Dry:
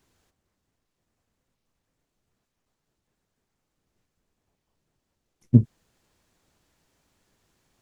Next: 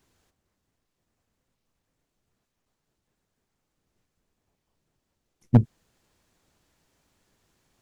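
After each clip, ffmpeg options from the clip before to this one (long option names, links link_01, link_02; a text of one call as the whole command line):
ffmpeg -i in.wav -af "aeval=exprs='0.531*(abs(mod(val(0)/0.531+3,4)-2)-1)':channel_layout=same" out.wav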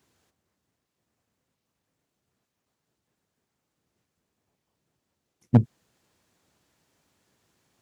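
ffmpeg -i in.wav -af "highpass=86" out.wav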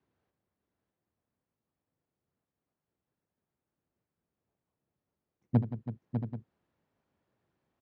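ffmpeg -i in.wav -filter_complex "[0:a]acrossover=split=380|760[link_01][link_02][link_03];[link_03]adynamicsmooth=sensitivity=4.5:basefreq=2300[link_04];[link_01][link_02][link_04]amix=inputs=3:normalize=0,aecho=1:1:76|174|328|599|677|784:0.224|0.211|0.224|0.422|0.224|0.178,volume=-8.5dB" out.wav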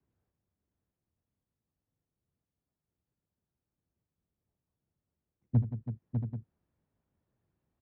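ffmpeg -i in.wav -filter_complex "[0:a]acrossover=split=140[link_01][link_02];[link_02]acompressor=threshold=-35dB:ratio=1.5[link_03];[link_01][link_03]amix=inputs=2:normalize=0,aemphasis=mode=reproduction:type=bsi,volume=-6.5dB" out.wav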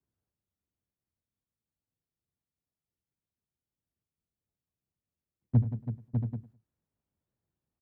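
ffmpeg -i in.wav -af "agate=range=-10dB:threshold=-55dB:ratio=16:detection=peak,aecho=1:1:103|206:0.119|0.0309,volume=2.5dB" out.wav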